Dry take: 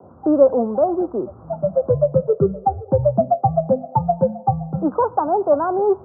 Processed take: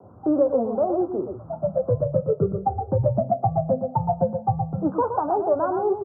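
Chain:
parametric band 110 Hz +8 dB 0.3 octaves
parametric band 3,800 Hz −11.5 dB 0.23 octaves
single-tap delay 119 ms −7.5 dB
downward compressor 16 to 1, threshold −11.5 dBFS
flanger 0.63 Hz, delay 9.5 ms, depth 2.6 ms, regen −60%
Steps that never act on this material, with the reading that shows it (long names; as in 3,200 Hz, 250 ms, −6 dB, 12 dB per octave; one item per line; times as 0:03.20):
parametric band 3,800 Hz: nothing at its input above 1,000 Hz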